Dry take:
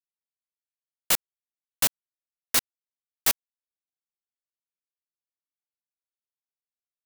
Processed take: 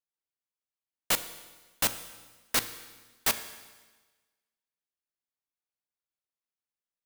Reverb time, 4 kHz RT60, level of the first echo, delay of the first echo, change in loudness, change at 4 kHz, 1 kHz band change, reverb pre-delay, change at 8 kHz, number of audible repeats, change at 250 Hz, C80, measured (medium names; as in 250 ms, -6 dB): 1.3 s, 1.3 s, no echo, no echo, -4.5 dB, -2.5 dB, 0.0 dB, 8 ms, -4.5 dB, no echo, +0.5 dB, 13.5 dB